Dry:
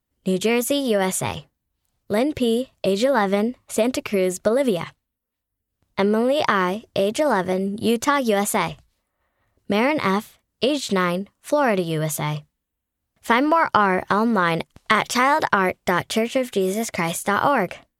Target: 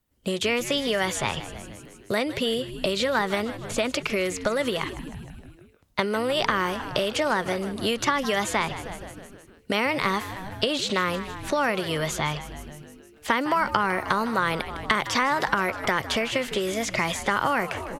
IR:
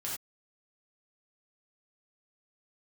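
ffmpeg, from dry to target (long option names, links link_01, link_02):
-filter_complex "[0:a]asplit=7[link_01][link_02][link_03][link_04][link_05][link_06][link_07];[link_02]adelay=155,afreqshift=-100,volume=-16dB[link_08];[link_03]adelay=310,afreqshift=-200,volume=-20dB[link_09];[link_04]adelay=465,afreqshift=-300,volume=-24dB[link_10];[link_05]adelay=620,afreqshift=-400,volume=-28dB[link_11];[link_06]adelay=775,afreqshift=-500,volume=-32.1dB[link_12];[link_07]adelay=930,afreqshift=-600,volume=-36.1dB[link_13];[link_01][link_08][link_09][link_10][link_11][link_12][link_13]amix=inputs=7:normalize=0,acrossover=split=450|1100|6300[link_14][link_15][link_16][link_17];[link_14]acompressor=threshold=-36dB:ratio=4[link_18];[link_15]acompressor=threshold=-35dB:ratio=4[link_19];[link_16]acompressor=threshold=-28dB:ratio=4[link_20];[link_17]acompressor=threshold=-51dB:ratio=4[link_21];[link_18][link_19][link_20][link_21]amix=inputs=4:normalize=0,volume=4dB"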